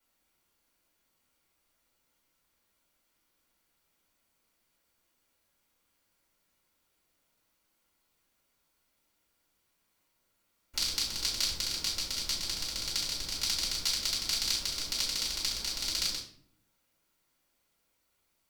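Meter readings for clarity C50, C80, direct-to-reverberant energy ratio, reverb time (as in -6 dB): 7.0 dB, 11.0 dB, -7.0 dB, 0.60 s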